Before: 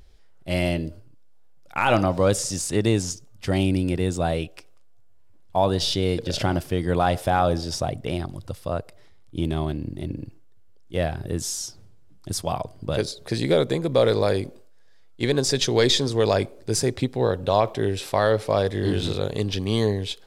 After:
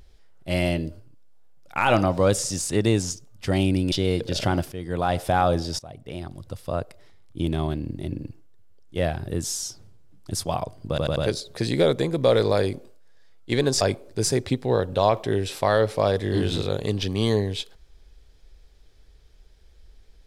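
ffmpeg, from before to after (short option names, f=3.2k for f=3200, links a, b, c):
-filter_complex "[0:a]asplit=8[a][b][c][d][e][f][g][h];[a]atrim=end=3.922[i];[b]atrim=start=5.898:end=6.7,asetpts=PTS-STARTPTS,afade=t=out:st=0.798:d=0.004:c=hsin:silence=0.251189[j];[c]atrim=start=6.7:end=7.77,asetpts=PTS-STARTPTS,afade=t=in:d=0.55:silence=0.251189,afade=t=out:st=1.066:d=0.004:c=hsin:silence=0.0891251[k];[d]atrim=start=7.77:end=12.962,asetpts=PTS-STARTPTS,afade=t=in:d=0.97:silence=0.0891251[l];[e]atrim=start=12.868:end=12.962[m];[f]atrim=start=12.868:end=12.962[n];[g]atrim=start=12.868:end=15.522[o];[h]atrim=start=16.318[p];[j][k][l]concat=n=3:v=0:a=1[q];[i][q]acrossfade=d=0.004:c1=hsin:c2=hsin[r];[r][m]acrossfade=d=0.004:c1=hsin:c2=hsin[s];[s][n]acrossfade=d=0.004:c1=hsin:c2=hsin[t];[t][o]acrossfade=d=0.004:c1=hsin:c2=hsin[u];[u][p]acrossfade=d=0.004:c1=hsin:c2=hsin"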